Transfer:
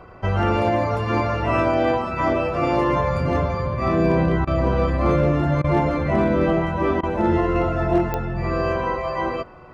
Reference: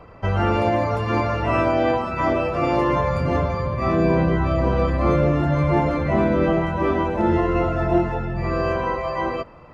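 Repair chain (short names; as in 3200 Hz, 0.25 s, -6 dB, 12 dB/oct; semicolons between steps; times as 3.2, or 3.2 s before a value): clip repair -10.5 dBFS; de-click; de-hum 369.5 Hz, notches 4; interpolate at 4.45/5.62/7.01, 21 ms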